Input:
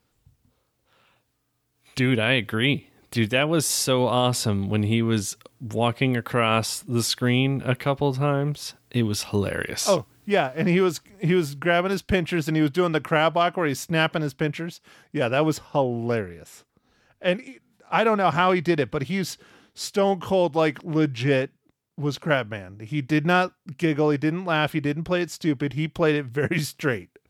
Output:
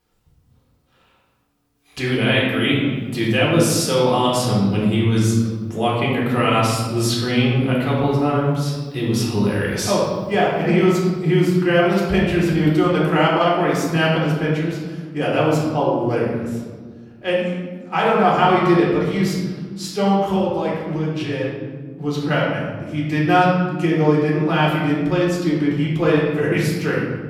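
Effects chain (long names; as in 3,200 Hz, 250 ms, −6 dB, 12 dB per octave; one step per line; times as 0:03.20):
0:20.36–0:21.43: downward compressor, threshold −24 dBFS, peak gain reduction 8 dB
convolution reverb RT60 1.6 s, pre-delay 3 ms, DRR −5 dB
level −3.5 dB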